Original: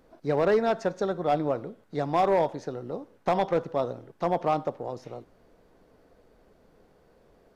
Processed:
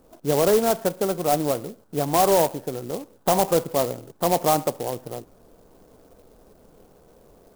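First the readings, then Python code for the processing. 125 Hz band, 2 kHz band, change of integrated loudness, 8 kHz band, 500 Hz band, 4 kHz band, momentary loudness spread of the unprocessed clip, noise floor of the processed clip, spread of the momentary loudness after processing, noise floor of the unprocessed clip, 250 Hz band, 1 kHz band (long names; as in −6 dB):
+4.5 dB, +2.0 dB, +5.0 dB, can't be measured, +4.5 dB, +11.5 dB, 14 LU, −55 dBFS, 13 LU, −62 dBFS, +4.5 dB, +4.0 dB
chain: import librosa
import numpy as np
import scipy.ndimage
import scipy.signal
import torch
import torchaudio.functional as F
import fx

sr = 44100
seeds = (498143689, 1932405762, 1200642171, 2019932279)

y = scipy.signal.sosfilt(scipy.signal.butter(4, 1500.0, 'lowpass', fs=sr, output='sos'), x)
y = fx.rider(y, sr, range_db=3, speed_s=2.0)
y = fx.clock_jitter(y, sr, seeds[0], jitter_ms=0.081)
y = y * 10.0 ** (4.0 / 20.0)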